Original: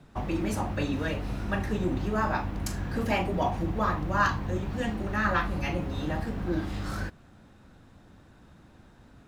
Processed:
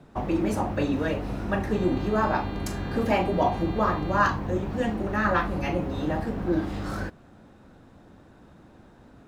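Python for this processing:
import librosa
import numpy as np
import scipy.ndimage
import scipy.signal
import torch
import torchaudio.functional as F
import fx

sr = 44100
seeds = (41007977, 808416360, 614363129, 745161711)

y = fx.peak_eq(x, sr, hz=460.0, db=7.5, octaves=2.9)
y = fx.dmg_buzz(y, sr, base_hz=400.0, harmonics=11, level_db=-42.0, tilt_db=-4, odd_only=False, at=(1.71, 4.18), fade=0.02)
y = y * 10.0 ** (-1.5 / 20.0)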